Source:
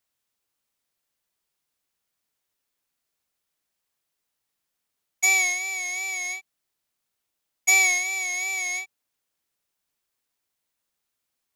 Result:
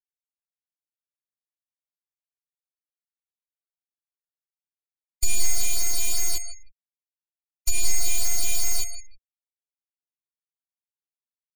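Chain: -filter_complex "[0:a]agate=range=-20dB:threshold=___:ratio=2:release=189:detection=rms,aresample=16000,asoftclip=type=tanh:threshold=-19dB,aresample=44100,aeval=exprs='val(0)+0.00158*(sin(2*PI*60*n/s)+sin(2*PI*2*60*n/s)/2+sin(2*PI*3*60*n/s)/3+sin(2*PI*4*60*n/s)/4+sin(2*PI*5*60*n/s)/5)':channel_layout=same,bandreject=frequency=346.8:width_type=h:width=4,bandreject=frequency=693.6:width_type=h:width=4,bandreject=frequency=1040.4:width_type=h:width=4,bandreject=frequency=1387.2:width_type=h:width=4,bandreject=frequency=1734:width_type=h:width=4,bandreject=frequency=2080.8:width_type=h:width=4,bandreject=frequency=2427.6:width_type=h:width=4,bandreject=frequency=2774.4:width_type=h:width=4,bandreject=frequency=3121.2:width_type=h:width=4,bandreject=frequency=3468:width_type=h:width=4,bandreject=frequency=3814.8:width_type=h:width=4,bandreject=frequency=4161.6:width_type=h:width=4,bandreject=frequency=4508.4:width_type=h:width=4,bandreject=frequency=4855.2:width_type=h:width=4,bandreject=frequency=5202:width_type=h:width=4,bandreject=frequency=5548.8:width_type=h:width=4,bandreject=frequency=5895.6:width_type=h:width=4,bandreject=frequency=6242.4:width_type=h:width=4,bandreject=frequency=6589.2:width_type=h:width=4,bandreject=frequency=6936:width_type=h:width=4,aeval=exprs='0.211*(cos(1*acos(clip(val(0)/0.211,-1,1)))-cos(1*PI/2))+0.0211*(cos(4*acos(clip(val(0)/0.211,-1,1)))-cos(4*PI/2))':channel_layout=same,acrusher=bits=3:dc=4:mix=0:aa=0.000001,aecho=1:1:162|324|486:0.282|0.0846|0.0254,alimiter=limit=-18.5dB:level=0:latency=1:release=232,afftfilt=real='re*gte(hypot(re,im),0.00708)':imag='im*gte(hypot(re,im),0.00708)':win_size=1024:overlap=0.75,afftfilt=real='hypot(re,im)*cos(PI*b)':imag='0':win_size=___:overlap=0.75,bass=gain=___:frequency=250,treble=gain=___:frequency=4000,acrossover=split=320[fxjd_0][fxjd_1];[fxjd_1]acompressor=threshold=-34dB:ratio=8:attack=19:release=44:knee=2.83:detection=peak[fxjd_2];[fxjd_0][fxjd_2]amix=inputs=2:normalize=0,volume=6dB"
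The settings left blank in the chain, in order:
-29dB, 512, 14, 13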